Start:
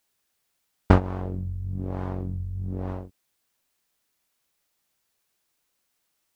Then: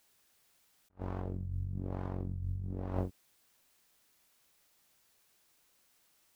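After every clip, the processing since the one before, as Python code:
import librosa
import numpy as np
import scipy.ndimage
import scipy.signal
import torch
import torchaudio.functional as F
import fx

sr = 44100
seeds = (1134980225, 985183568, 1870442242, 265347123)

y = fx.over_compress(x, sr, threshold_db=-35.0, ratio=-0.5)
y = F.gain(torch.from_numpy(y), -3.0).numpy()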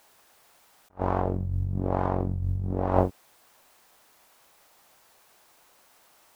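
y = fx.peak_eq(x, sr, hz=810.0, db=11.0, octaves=2.0)
y = F.gain(torch.from_numpy(y), 8.5).numpy()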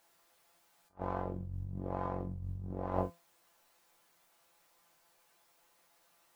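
y = fx.comb_fb(x, sr, f0_hz=170.0, decay_s=0.23, harmonics='all', damping=0.0, mix_pct=80)
y = F.gain(torch.from_numpy(y), -1.5).numpy()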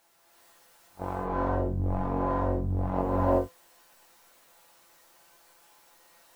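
y = fx.rev_gated(x, sr, seeds[0], gate_ms=400, shape='rising', drr_db=-6.0)
y = F.gain(torch.from_numpy(y), 3.5).numpy()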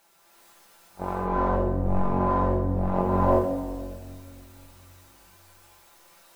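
y = fx.room_shoebox(x, sr, seeds[1], volume_m3=3500.0, walls='mixed', distance_m=1.2)
y = F.gain(torch.from_numpy(y), 3.0).numpy()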